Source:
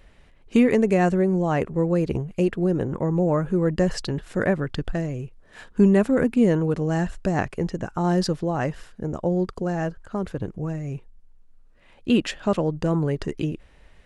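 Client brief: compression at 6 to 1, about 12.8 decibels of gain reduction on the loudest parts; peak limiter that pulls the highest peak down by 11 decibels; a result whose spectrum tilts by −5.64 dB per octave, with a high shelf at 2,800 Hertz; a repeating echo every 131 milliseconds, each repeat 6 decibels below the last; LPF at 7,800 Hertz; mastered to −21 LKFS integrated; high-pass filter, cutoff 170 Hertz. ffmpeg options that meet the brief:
ffmpeg -i in.wav -af "highpass=170,lowpass=7800,highshelf=frequency=2800:gain=7.5,acompressor=threshold=-28dB:ratio=6,alimiter=level_in=2.5dB:limit=-24dB:level=0:latency=1,volume=-2.5dB,aecho=1:1:131|262|393|524|655|786:0.501|0.251|0.125|0.0626|0.0313|0.0157,volume=15dB" out.wav

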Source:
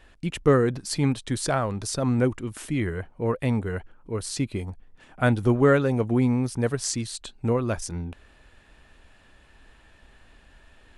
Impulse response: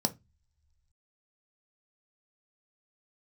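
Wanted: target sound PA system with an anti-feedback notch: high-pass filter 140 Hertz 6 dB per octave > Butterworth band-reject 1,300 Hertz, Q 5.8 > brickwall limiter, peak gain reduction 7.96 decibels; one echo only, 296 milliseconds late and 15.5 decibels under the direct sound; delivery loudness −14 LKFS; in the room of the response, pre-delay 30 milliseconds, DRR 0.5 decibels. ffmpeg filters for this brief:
-filter_complex "[0:a]aecho=1:1:296:0.168,asplit=2[link_01][link_02];[1:a]atrim=start_sample=2205,adelay=30[link_03];[link_02][link_03]afir=irnorm=-1:irlink=0,volume=-6dB[link_04];[link_01][link_04]amix=inputs=2:normalize=0,highpass=frequency=140:poles=1,asuperstop=centerf=1300:order=8:qfactor=5.8,volume=8.5dB,alimiter=limit=-2.5dB:level=0:latency=1"

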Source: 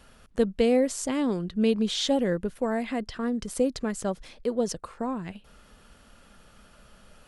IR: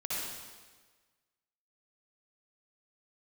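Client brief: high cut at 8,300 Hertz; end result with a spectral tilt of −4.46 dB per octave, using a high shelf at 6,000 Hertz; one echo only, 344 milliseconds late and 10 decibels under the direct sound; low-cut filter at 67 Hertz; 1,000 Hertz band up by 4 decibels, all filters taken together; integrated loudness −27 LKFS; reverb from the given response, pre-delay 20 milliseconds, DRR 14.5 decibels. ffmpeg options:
-filter_complex "[0:a]highpass=67,lowpass=8300,equalizer=frequency=1000:width_type=o:gain=5.5,highshelf=frequency=6000:gain=-3.5,aecho=1:1:344:0.316,asplit=2[link_01][link_02];[1:a]atrim=start_sample=2205,adelay=20[link_03];[link_02][link_03]afir=irnorm=-1:irlink=0,volume=-19dB[link_04];[link_01][link_04]amix=inputs=2:normalize=0,volume=-0.5dB"

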